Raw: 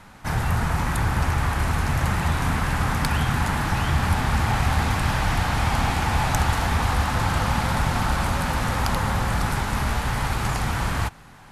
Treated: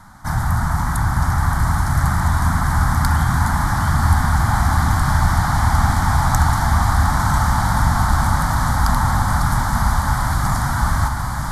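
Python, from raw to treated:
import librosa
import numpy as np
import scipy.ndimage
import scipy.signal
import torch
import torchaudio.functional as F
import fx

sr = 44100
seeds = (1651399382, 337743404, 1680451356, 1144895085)

p1 = fx.fixed_phaser(x, sr, hz=1100.0, stages=4)
p2 = p1 + fx.echo_diffused(p1, sr, ms=1027, feedback_pct=64, wet_db=-5, dry=0)
y = F.gain(torch.from_numpy(p2), 5.0).numpy()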